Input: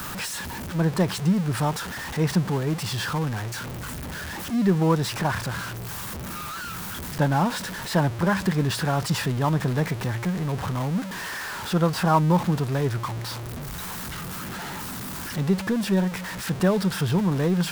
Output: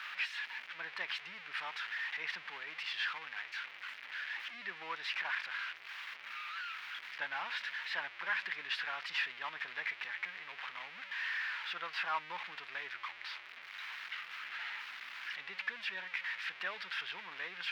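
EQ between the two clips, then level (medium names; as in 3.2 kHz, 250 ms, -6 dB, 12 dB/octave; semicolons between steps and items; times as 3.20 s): resonant high-pass 2.2 kHz, resonance Q 2.1; distance through air 320 m; treble shelf 8.2 kHz -5.5 dB; -2.0 dB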